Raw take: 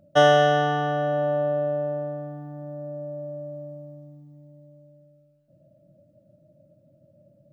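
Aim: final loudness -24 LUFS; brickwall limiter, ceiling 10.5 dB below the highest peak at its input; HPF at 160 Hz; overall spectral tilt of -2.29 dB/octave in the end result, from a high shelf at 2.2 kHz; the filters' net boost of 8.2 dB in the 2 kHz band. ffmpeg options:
-af "highpass=160,equalizer=f=2000:t=o:g=8.5,highshelf=f=2200:g=6.5,volume=1.19,alimiter=limit=0.237:level=0:latency=1"

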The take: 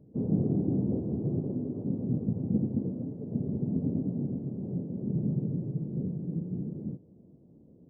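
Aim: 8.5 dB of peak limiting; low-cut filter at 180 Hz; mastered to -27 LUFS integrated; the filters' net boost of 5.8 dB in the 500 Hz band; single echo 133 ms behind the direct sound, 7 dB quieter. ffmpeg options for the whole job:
-af "highpass=180,equalizer=f=500:t=o:g=8,alimiter=limit=0.0668:level=0:latency=1,aecho=1:1:133:0.447,volume=2"

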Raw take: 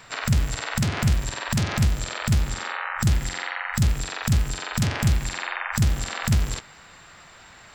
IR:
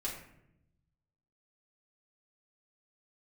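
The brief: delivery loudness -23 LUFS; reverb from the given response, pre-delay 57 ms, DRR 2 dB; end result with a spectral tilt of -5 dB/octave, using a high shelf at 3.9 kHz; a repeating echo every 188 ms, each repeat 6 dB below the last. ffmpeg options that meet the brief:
-filter_complex "[0:a]highshelf=f=3900:g=-3,aecho=1:1:188|376|564|752|940|1128:0.501|0.251|0.125|0.0626|0.0313|0.0157,asplit=2[s0][s1];[1:a]atrim=start_sample=2205,adelay=57[s2];[s1][s2]afir=irnorm=-1:irlink=0,volume=0.631[s3];[s0][s3]amix=inputs=2:normalize=0,volume=0.891"

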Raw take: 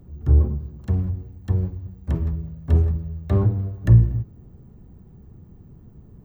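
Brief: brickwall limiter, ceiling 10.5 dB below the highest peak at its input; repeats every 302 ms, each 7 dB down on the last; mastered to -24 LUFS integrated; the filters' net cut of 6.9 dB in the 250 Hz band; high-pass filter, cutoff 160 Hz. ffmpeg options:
-af "highpass=160,equalizer=f=250:t=o:g=-8.5,alimiter=limit=0.0708:level=0:latency=1,aecho=1:1:302|604|906|1208|1510:0.447|0.201|0.0905|0.0407|0.0183,volume=3.55"

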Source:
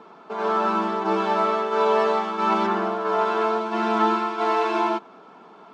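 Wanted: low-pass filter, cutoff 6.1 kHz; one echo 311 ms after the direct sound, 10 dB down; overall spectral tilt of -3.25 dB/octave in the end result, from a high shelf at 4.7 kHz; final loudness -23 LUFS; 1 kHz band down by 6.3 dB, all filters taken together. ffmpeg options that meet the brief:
-af "lowpass=6100,equalizer=f=1000:t=o:g=-8.5,highshelf=f=4700:g=4.5,aecho=1:1:311:0.316,volume=1.33"

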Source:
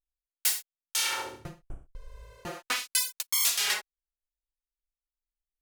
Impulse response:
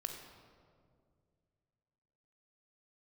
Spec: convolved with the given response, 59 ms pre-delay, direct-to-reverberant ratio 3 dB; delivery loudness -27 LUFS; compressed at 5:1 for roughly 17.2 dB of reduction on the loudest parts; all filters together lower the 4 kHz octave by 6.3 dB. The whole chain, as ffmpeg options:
-filter_complex "[0:a]equalizer=f=4000:t=o:g=-8.5,acompressor=threshold=0.00708:ratio=5,asplit=2[s0][s1];[1:a]atrim=start_sample=2205,adelay=59[s2];[s1][s2]afir=irnorm=-1:irlink=0,volume=0.794[s3];[s0][s3]amix=inputs=2:normalize=0,volume=7.08"

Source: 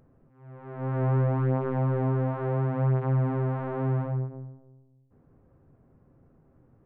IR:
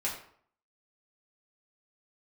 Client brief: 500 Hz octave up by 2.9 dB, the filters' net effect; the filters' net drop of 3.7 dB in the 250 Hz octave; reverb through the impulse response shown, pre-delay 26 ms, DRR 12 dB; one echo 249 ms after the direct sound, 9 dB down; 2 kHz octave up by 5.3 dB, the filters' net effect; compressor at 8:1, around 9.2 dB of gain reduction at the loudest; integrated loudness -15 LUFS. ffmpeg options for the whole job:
-filter_complex "[0:a]equalizer=f=250:t=o:g=-7.5,equalizer=f=500:t=o:g=5.5,equalizer=f=2000:t=o:g=7,acompressor=threshold=0.0251:ratio=8,aecho=1:1:249:0.355,asplit=2[s0][s1];[1:a]atrim=start_sample=2205,adelay=26[s2];[s1][s2]afir=irnorm=-1:irlink=0,volume=0.141[s3];[s0][s3]amix=inputs=2:normalize=0,volume=9.44"

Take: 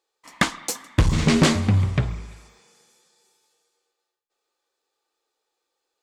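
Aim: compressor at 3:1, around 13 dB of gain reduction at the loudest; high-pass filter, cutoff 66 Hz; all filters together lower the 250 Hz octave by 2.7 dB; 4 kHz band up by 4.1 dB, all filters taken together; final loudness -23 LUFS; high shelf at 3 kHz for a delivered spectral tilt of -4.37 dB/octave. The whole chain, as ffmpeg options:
-af "highpass=66,equalizer=f=250:t=o:g=-3.5,highshelf=f=3000:g=-4.5,equalizer=f=4000:t=o:g=8.5,acompressor=threshold=0.0251:ratio=3,volume=3.55"

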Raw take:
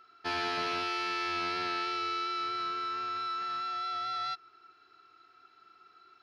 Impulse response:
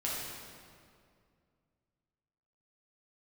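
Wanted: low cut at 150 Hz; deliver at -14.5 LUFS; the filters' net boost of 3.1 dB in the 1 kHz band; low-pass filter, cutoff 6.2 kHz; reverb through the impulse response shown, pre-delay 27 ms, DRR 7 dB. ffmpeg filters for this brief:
-filter_complex "[0:a]highpass=150,lowpass=6200,equalizer=f=1000:t=o:g=5,asplit=2[s0][s1];[1:a]atrim=start_sample=2205,adelay=27[s2];[s1][s2]afir=irnorm=-1:irlink=0,volume=0.251[s3];[s0][s3]amix=inputs=2:normalize=0,volume=6.31"

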